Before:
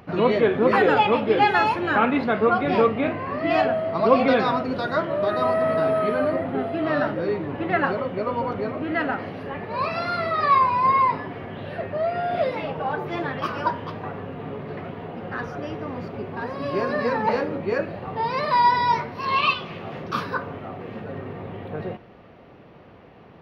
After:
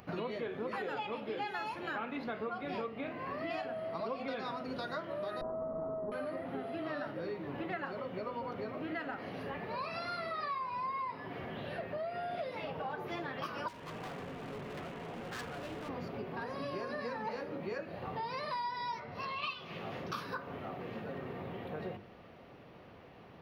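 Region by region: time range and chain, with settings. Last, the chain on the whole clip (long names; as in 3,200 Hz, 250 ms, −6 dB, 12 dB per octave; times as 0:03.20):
0:05.41–0:06.12: lower of the sound and its delayed copy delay 0.36 ms + Butterworth low-pass 1,200 Hz 48 dB per octave
0:13.68–0:15.89: variable-slope delta modulation 16 kbit/s + hard clipping −33.5 dBFS
0:18.99–0:19.44: low-pass filter 3,300 Hz 6 dB per octave + downward compressor, threshold −24 dBFS + comb filter 1.5 ms, depth 32%
whole clip: high-shelf EQ 4,500 Hz +10 dB; mains-hum notches 50/100/150/200/250/300/350/400/450 Hz; downward compressor, threshold −30 dBFS; level −6.5 dB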